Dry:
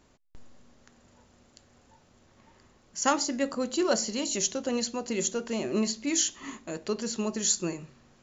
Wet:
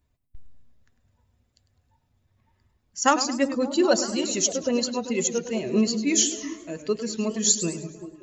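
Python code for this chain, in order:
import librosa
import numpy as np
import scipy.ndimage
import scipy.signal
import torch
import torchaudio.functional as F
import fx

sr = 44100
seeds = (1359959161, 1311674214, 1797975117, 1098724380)

y = fx.bin_expand(x, sr, power=1.5)
y = fx.echo_stepped(y, sr, ms=193, hz=200.0, octaves=0.7, feedback_pct=70, wet_db=-7.0)
y = fx.echo_warbled(y, sr, ms=105, feedback_pct=41, rate_hz=2.8, cents=135, wet_db=-12.5)
y = y * librosa.db_to_amplitude(7.0)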